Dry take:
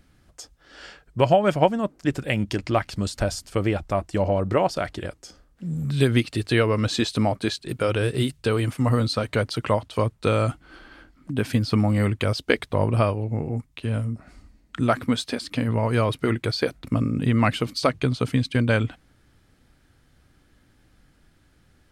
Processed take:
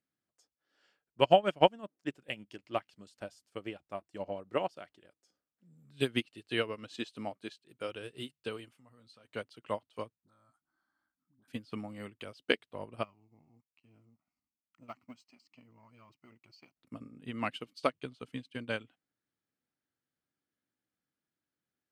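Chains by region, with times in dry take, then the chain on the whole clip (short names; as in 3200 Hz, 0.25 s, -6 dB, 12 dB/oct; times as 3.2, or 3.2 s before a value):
8.68–9.25 bell 370 Hz -4 dB 1.9 oct + compressor 4:1, threshold -27 dBFS + doubler 17 ms -13 dB
10.15–11.48 dispersion highs, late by 57 ms, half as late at 660 Hz + compressor 1.5:1, threshold -50 dBFS + fixed phaser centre 1100 Hz, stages 4
13.03–16.77 G.711 law mismatch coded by A + fixed phaser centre 2400 Hz, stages 8 + core saturation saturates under 370 Hz
whole clip: HPF 190 Hz 12 dB/oct; dynamic EQ 2900 Hz, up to +8 dB, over -49 dBFS, Q 3.5; upward expander 2.5:1, over -30 dBFS; gain -3 dB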